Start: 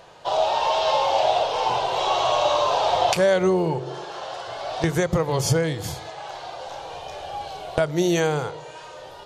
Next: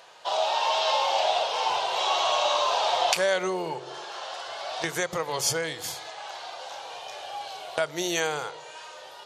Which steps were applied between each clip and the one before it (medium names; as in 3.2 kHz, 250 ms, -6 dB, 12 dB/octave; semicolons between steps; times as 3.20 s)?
high-pass 1.3 kHz 6 dB/octave; trim +1.5 dB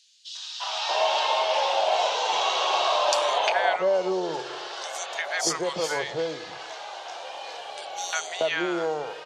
three-band isolator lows -14 dB, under 190 Hz, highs -22 dB, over 8 kHz; three bands offset in time highs, mids, lows 350/630 ms, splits 1/3.8 kHz; trim +3.5 dB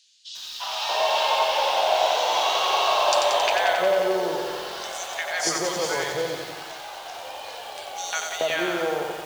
bit-crushed delay 90 ms, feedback 80%, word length 7-bit, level -5 dB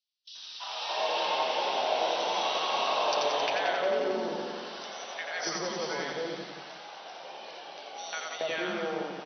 gate with hold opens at -31 dBFS; frequency-shifting echo 83 ms, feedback 30%, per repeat -150 Hz, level -7 dB; FFT band-pass 130–6100 Hz; trim -8 dB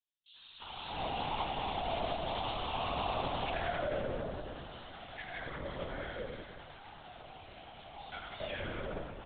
on a send at -6.5 dB: reverberation RT60 2.2 s, pre-delay 3 ms; on the sum: LPC vocoder at 8 kHz whisper; trim -8 dB